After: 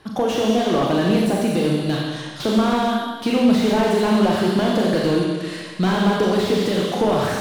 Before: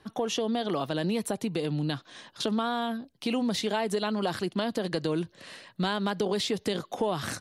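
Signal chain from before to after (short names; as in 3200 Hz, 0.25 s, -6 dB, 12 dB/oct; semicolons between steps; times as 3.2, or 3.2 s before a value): Schroeder reverb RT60 1.4 s, combs from 29 ms, DRR -1 dB; slew limiter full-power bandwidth 51 Hz; gain +8 dB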